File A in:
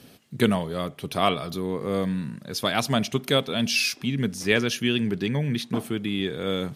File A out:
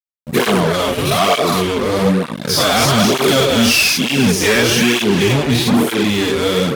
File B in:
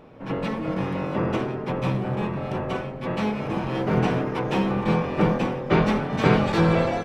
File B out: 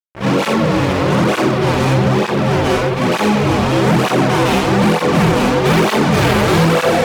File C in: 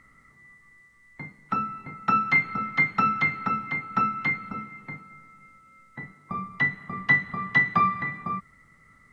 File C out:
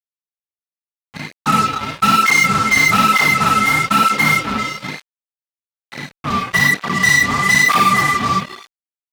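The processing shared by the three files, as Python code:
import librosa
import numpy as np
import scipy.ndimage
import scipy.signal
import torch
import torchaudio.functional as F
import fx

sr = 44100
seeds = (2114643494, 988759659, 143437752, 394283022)

p1 = fx.spec_dilate(x, sr, span_ms=120)
p2 = p1 + fx.echo_stepped(p1, sr, ms=132, hz=410.0, octaves=1.4, feedback_pct=70, wet_db=-5.0, dry=0)
p3 = fx.fuzz(p2, sr, gain_db=24.0, gate_db=-33.0)
p4 = fx.flanger_cancel(p3, sr, hz=1.1, depth_ms=6.6)
y = F.gain(torch.from_numpy(p4), 5.5).numpy()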